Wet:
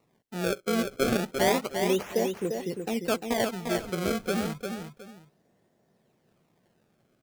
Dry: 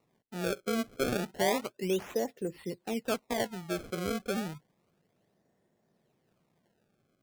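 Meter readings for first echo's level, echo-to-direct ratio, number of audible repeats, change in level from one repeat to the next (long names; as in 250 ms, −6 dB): −6.0 dB, −5.5 dB, 2, repeats not evenly spaced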